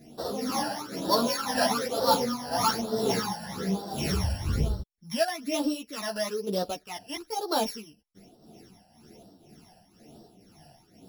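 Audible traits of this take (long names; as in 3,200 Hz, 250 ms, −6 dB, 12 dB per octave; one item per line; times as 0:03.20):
a buzz of ramps at a fixed pitch in blocks of 8 samples
phaser sweep stages 12, 1.1 Hz, lowest notch 370–2,300 Hz
tremolo triangle 2 Hz, depth 70%
a shimmering, thickened sound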